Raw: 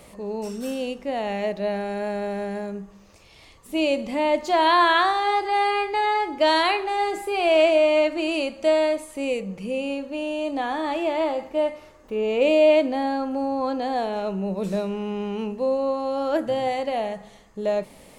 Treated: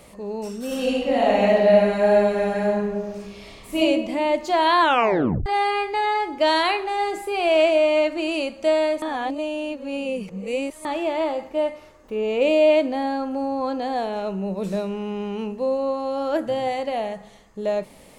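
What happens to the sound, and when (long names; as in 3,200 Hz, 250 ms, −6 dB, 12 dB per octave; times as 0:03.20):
0:00.66–0:03.78: thrown reverb, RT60 1.5 s, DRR −7 dB
0:04.81: tape stop 0.65 s
0:09.02–0:10.85: reverse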